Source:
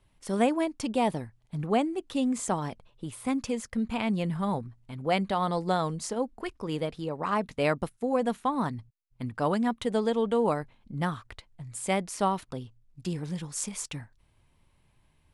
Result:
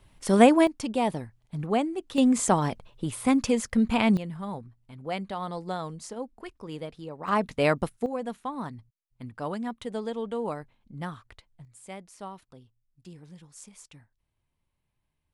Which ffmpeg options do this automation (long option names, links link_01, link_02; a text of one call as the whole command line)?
ffmpeg -i in.wav -af "asetnsamples=nb_out_samples=441:pad=0,asendcmd='0.67 volume volume 0dB;2.18 volume volume 6.5dB;4.17 volume volume -6dB;7.28 volume volume 3dB;8.06 volume volume -6dB;11.65 volume volume -14dB',volume=8dB" out.wav